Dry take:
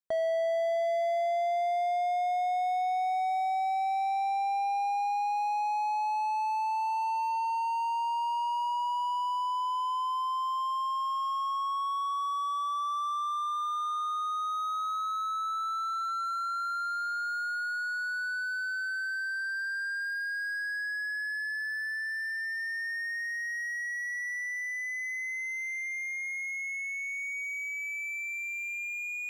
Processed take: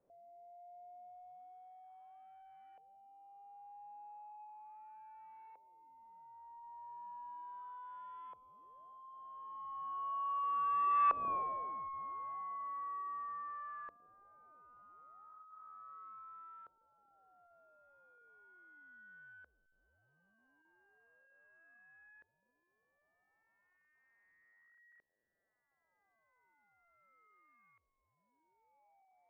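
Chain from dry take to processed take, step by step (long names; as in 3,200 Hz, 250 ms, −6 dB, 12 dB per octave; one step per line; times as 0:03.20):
linear delta modulator 16 kbit/s, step −34.5 dBFS
source passing by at 0:11.29, 18 m/s, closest 2.1 metres
auto-filter low-pass saw up 0.36 Hz 520–1,600 Hz
level +5 dB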